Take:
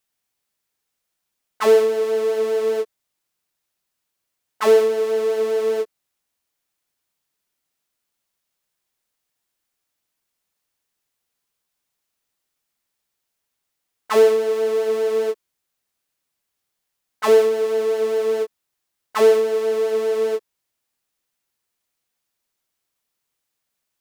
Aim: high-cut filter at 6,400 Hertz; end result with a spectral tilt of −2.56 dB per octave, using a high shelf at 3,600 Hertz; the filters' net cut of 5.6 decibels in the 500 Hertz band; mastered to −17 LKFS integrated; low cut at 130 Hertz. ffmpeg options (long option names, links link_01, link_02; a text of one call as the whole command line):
ffmpeg -i in.wav -af "highpass=130,lowpass=6400,equalizer=frequency=500:width_type=o:gain=-6.5,highshelf=frequency=3600:gain=3,volume=7.5dB" out.wav